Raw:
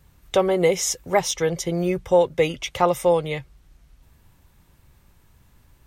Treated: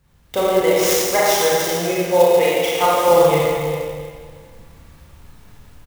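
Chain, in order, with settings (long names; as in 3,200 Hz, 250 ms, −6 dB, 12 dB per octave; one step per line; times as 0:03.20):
0:00.61–0:03.08: high-pass filter 540 Hz 6 dB per octave
automatic gain control gain up to 8.5 dB
slap from a distant wall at 59 metres, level −11 dB
four-comb reverb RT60 1.9 s, combs from 27 ms, DRR −7 dB
converter with an unsteady clock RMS 0.027 ms
level −5 dB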